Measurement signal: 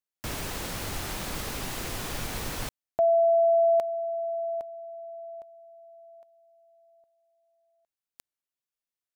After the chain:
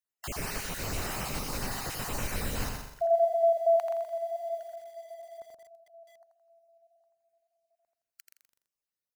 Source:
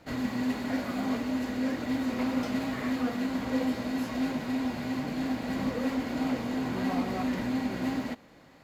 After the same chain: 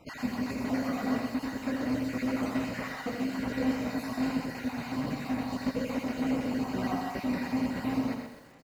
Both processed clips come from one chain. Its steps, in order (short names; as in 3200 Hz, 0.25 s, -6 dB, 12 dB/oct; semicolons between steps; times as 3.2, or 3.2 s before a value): random spectral dropouts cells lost 39%; notch 3400 Hz, Q 6.2; dynamic EQ 340 Hz, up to -5 dB, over -53 dBFS, Q 7.5; on a send: feedback echo 84 ms, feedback 40%, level -6.5 dB; on the sum: lo-fi delay 0.125 s, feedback 35%, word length 9-bit, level -7 dB